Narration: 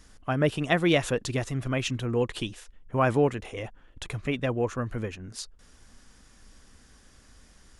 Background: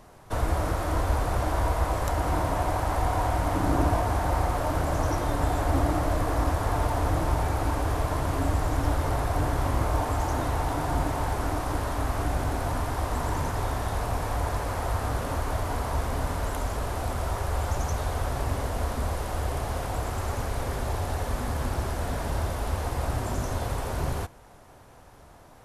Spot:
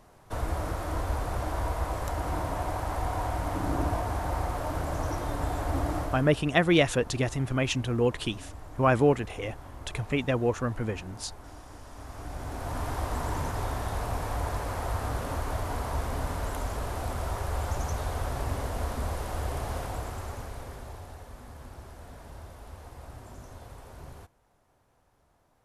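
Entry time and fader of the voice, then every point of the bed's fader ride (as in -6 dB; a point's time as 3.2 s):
5.85 s, +1.0 dB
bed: 6.01 s -5 dB
6.42 s -19 dB
11.83 s -19 dB
12.87 s -3 dB
19.77 s -3 dB
21.29 s -16.5 dB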